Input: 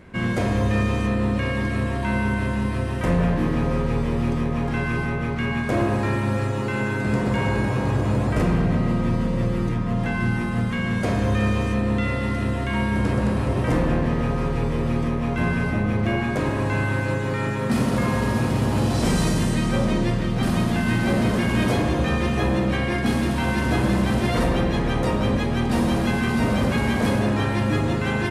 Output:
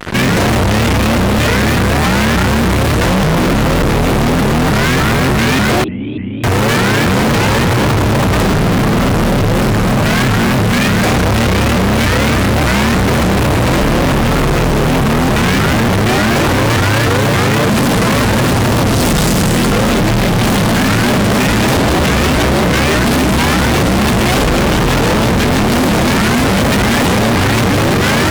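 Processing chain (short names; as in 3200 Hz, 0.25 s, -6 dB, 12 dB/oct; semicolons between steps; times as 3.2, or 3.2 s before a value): fuzz box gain 47 dB, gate -43 dBFS; 5.84–6.44 vocal tract filter i; shaped vibrato saw up 3.4 Hz, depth 250 cents; gain +2.5 dB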